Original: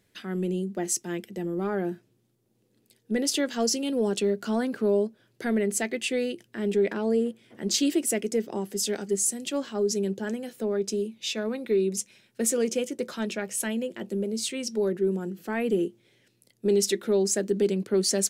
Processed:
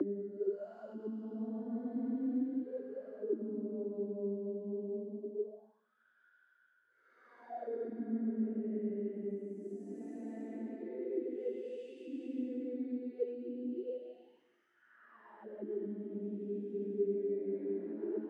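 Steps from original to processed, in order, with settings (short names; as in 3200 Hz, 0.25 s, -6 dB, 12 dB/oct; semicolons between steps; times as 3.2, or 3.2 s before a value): Paulstretch 6.9×, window 0.25 s, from 4.31; auto-wah 290–1500 Hz, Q 12, down, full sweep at -25.5 dBFS; gain +4 dB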